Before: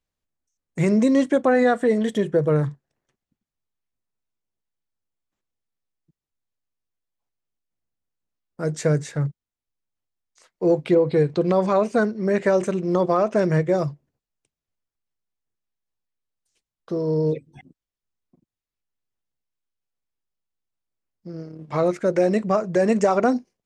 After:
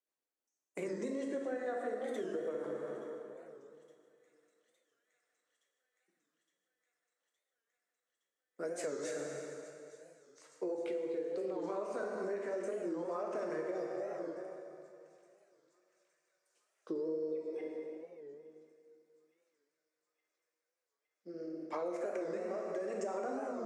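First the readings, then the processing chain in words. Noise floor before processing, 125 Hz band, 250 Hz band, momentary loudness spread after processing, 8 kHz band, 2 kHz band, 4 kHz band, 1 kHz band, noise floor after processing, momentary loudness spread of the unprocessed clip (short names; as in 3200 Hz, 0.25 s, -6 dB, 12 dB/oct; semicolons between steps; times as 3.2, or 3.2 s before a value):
under -85 dBFS, -32.0 dB, -20.0 dB, 14 LU, -11.5 dB, -17.5 dB, -17.0 dB, -18.0 dB, under -85 dBFS, 11 LU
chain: limiter -15.5 dBFS, peak gain reduction 8.5 dB; HPF 310 Hz 24 dB/oct; rotary speaker horn 6.3 Hz, later 0.7 Hz, at 8.67; bell 3500 Hz -5.5 dB 1 oct; plate-style reverb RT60 2.6 s, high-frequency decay 0.8×, DRR -0.5 dB; compressor, threshold -31 dBFS, peak gain reduction 13 dB; on a send: thin delay 0.865 s, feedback 76%, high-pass 2800 Hz, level -19 dB; on the sum: record warp 45 rpm, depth 160 cents; gain -4.5 dB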